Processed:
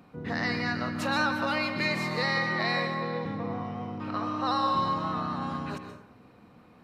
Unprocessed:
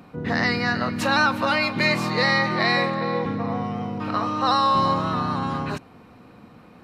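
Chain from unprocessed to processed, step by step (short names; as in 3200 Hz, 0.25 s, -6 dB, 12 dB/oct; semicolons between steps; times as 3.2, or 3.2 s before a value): 3.39–5.41 high shelf 7400 Hz -6.5 dB; plate-style reverb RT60 0.67 s, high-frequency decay 0.55×, pre-delay 0.115 s, DRR 6.5 dB; gain -8 dB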